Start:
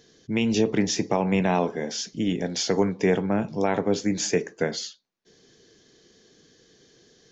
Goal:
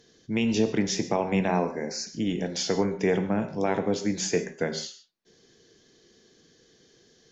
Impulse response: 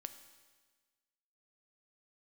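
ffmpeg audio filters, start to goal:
-filter_complex "[0:a]asettb=1/sr,asplit=3[a][b][c];[a]atrim=end=1.484[d];[b]atrim=start=1.48:end=2.07,asetpts=PTS-STARTPTS,afade=t=in:d=0.004:c=qsin,afade=t=out:st=0.586:d=0.004:c=qsin,asuperstop=centerf=3200:order=8:qfactor=2.1[e];[c]atrim=start=2.066[f];[d][e]acrossfade=d=0.004:c1=hsin:c2=qsin[g];[g][f]acrossfade=d=0.004:c1=qsin:c2=hsin[h];[1:a]atrim=start_sample=2205,afade=t=out:st=0.15:d=0.01,atrim=end_sample=7056,asetrate=29106,aresample=44100[i];[h][i]afir=irnorm=-1:irlink=0"

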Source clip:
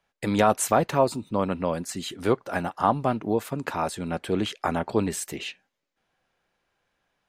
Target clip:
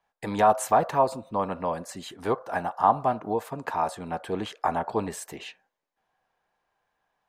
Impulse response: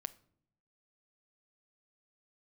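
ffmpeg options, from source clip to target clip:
-filter_complex "[0:a]asplit=2[a][b];[b]asuperpass=centerf=910:order=12:qfactor=0.82[c];[1:a]atrim=start_sample=2205,lowshelf=f=190:g=11[d];[c][d]afir=irnorm=-1:irlink=0,volume=9dB[e];[a][e]amix=inputs=2:normalize=0,volume=-6.5dB"

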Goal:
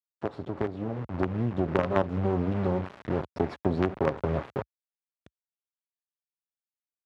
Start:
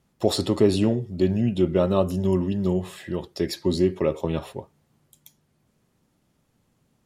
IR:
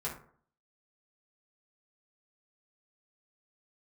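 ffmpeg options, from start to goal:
-af "aecho=1:1:7.2:0.31,acrusher=bits=3:dc=4:mix=0:aa=0.000001,lowpass=1.5k,acompressor=threshold=-26dB:ratio=6,highpass=f=65:w=0.5412,highpass=f=65:w=1.3066,dynaudnorm=f=260:g=9:m=8dB,volume=-1.5dB"

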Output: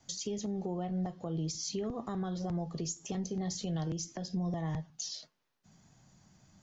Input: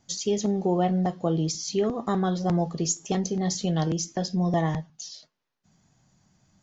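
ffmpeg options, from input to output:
-filter_complex "[0:a]acrossover=split=160[a][b];[b]acompressor=threshold=-34dB:ratio=4[c];[a][c]amix=inputs=2:normalize=0,adynamicequalizer=threshold=0.00708:dfrequency=190:dqfactor=2.2:tfrequency=190:tqfactor=2.2:attack=5:release=100:ratio=0.375:range=2:mode=cutabove:tftype=bell,alimiter=level_in=4.5dB:limit=-24dB:level=0:latency=1:release=305,volume=-4.5dB,volume=1.5dB"

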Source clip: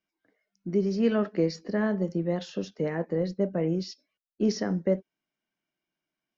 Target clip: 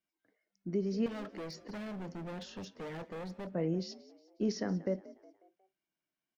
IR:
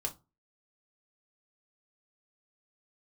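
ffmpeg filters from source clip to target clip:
-filter_complex "[0:a]alimiter=limit=-17.5dB:level=0:latency=1:release=229,asettb=1/sr,asplit=3[a][b][c];[a]atrim=end=1.064[d];[b]atrim=start=1.06:end=3.47,asetpts=PTS-STARTPTS,afade=t=in:d=0.004:c=qsin,afade=t=out:st=2.406:d=0.004:c=qsin,volume=34.5dB,asoftclip=hard,volume=-34.5dB[e];[c]atrim=start=3.466[f];[d][e]acrossfade=d=0.004:c1=hsin:c2=qsin[g];[g][f]acrossfade=d=0.004:c1=qsin:c2=hsin,asplit=5[h][i][j][k][l];[i]adelay=181,afreqshift=48,volume=-19.5dB[m];[j]adelay=362,afreqshift=96,volume=-26.2dB[n];[k]adelay=543,afreqshift=144,volume=-33dB[o];[l]adelay=724,afreqshift=192,volume=-39.7dB[p];[h][m][n][o][p]amix=inputs=5:normalize=0,volume=-5.5dB"

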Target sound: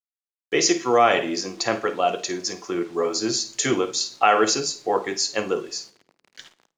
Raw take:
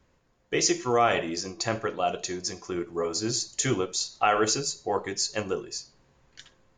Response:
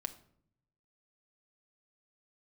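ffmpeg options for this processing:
-filter_complex "[0:a]acrusher=bits=8:mix=0:aa=0.000001,acrossover=split=170 7800:gain=0.141 1 0.158[a][b][c];[a][b][c]amix=inputs=3:normalize=0,asplit=2[d][e];[1:a]atrim=start_sample=2205,asetrate=41454,aresample=44100,adelay=52[f];[e][f]afir=irnorm=-1:irlink=0,volume=-13dB[g];[d][g]amix=inputs=2:normalize=0,volume=5.5dB"

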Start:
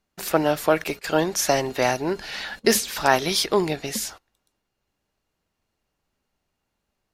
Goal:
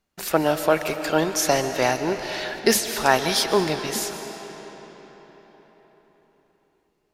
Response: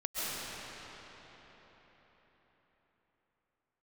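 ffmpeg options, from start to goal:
-filter_complex "[0:a]asplit=2[a][b];[1:a]atrim=start_sample=2205,lowshelf=f=470:g=-4.5[c];[b][c]afir=irnorm=-1:irlink=0,volume=-13dB[d];[a][d]amix=inputs=2:normalize=0,volume=-1dB"

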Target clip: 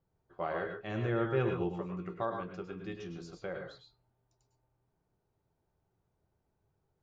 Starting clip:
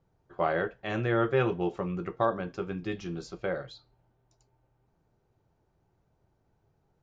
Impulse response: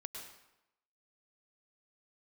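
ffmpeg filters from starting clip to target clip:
-filter_complex "[0:a]asettb=1/sr,asplit=3[a][b][c];[a]atrim=end=0.804[d];[b]atrim=start=0.8:end=1.75,asetpts=PTS-STARTPTS,afade=t=in:d=0.004:c=qsin,afade=t=out:st=0.946:d=0.004:c=qsin,lowshelf=f=370:g=6.5[e];[c]atrim=start=1.746[f];[d][e]acrossfade=d=0.004:c1=hsin:c2=qsin[g];[g][f]acrossfade=d=0.004:c1=qsin:c2=hsin[h];[1:a]atrim=start_sample=2205,atrim=end_sample=6174[i];[h][i]afir=irnorm=-1:irlink=0,volume=-3.5dB"

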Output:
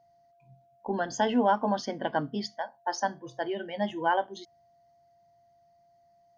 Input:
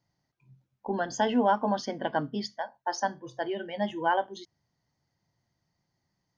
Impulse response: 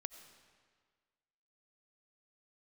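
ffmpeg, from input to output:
-af "aeval=exprs='val(0)+0.000891*sin(2*PI*690*n/s)':c=same"

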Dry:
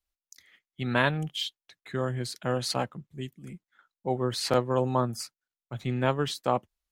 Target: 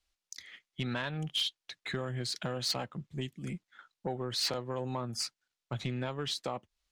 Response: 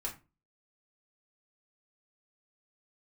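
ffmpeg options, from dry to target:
-filter_complex "[0:a]lowpass=4.5k,asplit=2[a][b];[b]alimiter=limit=-19.5dB:level=0:latency=1,volume=-2dB[c];[a][c]amix=inputs=2:normalize=0,acompressor=threshold=-32dB:ratio=6,crystalizer=i=3:c=0,asoftclip=type=tanh:threshold=-24dB"

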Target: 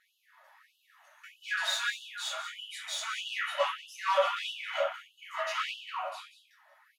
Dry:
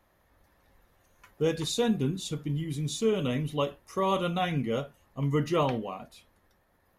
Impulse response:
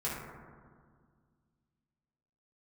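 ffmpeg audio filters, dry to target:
-filter_complex "[0:a]asettb=1/sr,asplit=3[a][b][c];[a]atrim=end=1.434[d];[b]atrim=start=1.43:end=3.44,asetpts=PTS-STARTPTS,afade=t=in:d=0.004:c=qsin,afade=t=out:st=2.006:d=0.004:c=qsin,equalizer=f=1.4k:w=2.4:g=11[e];[c]atrim=start=3.436[f];[d][e]acrossfade=d=0.004:c1=hsin:c2=qsin[g];[g][f]acrossfade=d=0.004:c1=qsin:c2=hsin,asplit=2[h][i];[i]highpass=f=720:p=1,volume=21dB,asoftclip=type=tanh:threshold=-13.5dB[j];[h][j]amix=inputs=2:normalize=0,lowpass=f=4k:p=1,volume=-6dB,tremolo=f=190:d=0.71,flanger=delay=15.5:depth=4.8:speed=1.2,aecho=1:1:185:0.266[k];[1:a]atrim=start_sample=2205,afade=t=out:st=0.23:d=0.01,atrim=end_sample=10584,asetrate=57330,aresample=44100[l];[k][l]afir=irnorm=-1:irlink=0,afftfilt=real='re*gte(b*sr/1024,530*pow(2700/530,0.5+0.5*sin(2*PI*1.6*pts/sr)))':imag='im*gte(b*sr/1024,530*pow(2700/530,0.5+0.5*sin(2*PI*1.6*pts/sr)))':win_size=1024:overlap=0.75"

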